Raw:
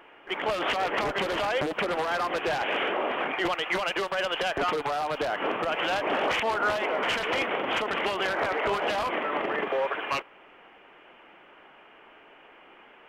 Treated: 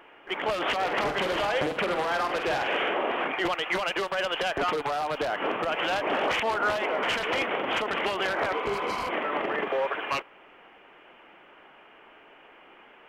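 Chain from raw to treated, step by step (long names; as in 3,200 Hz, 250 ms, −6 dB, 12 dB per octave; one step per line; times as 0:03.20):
0:00.83–0:03.28: flutter between parallel walls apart 8.4 metres, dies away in 0.37 s
0:08.56–0:09.05: healed spectral selection 570–3,800 Hz after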